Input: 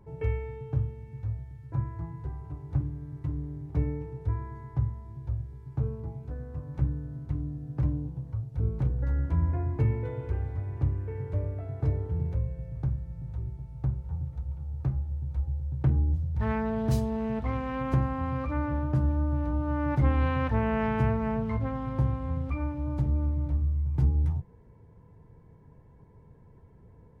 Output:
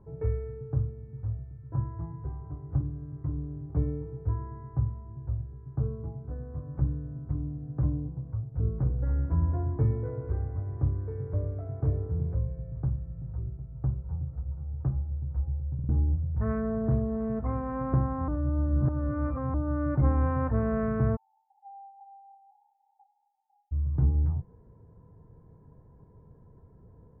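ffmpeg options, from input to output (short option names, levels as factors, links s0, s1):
-filter_complex "[0:a]asplit=3[s0][s1][s2];[s0]afade=t=out:st=21.15:d=0.02[s3];[s1]asuperpass=centerf=810:order=12:qfactor=7.3,afade=t=in:st=21.15:d=0.02,afade=t=out:st=23.71:d=0.02[s4];[s2]afade=t=in:st=23.71:d=0.02[s5];[s3][s4][s5]amix=inputs=3:normalize=0,asplit=6[s6][s7][s8][s9][s10][s11];[s6]atrim=end=15.792[s12];[s7]atrim=start=15.738:end=15.792[s13];[s8]atrim=start=15.738:end=15.792[s14];[s9]atrim=start=15.888:end=18.282[s15];[s10]atrim=start=18.278:end=19.542,asetpts=PTS-STARTPTS,areverse[s16];[s11]atrim=start=19.538[s17];[s12][s13]acrossfade=d=0.004:c1=hsin:c2=hsin[s18];[s18][s14]acrossfade=d=0.004:c1=hsin:c2=hsin[s19];[s19][s15]acrossfade=d=0.004:c1=hsin:c2=hsin[s20];[s20][s16]acrossfade=d=0.004:c1=hsin:c2=hsin[s21];[s21][s17]acrossfade=d=0.004:c1=hsin:c2=hsin,lowpass=f=1400:w=0.5412,lowpass=f=1400:w=1.3066,bandreject=f=880:w=12"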